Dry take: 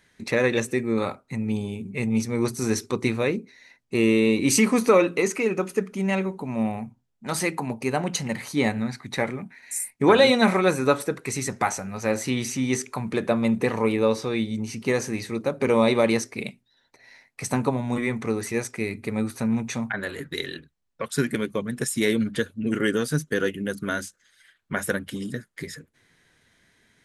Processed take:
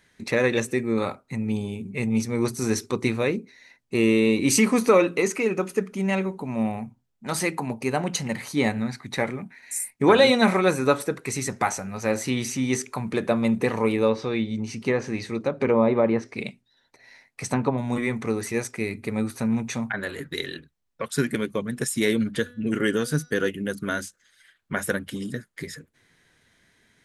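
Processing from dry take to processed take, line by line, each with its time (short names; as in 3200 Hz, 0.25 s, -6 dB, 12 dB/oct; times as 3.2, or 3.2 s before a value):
14.08–17.78 treble ducked by the level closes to 1300 Hz, closed at -16 dBFS
22.39–23.31 de-hum 244.4 Hz, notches 24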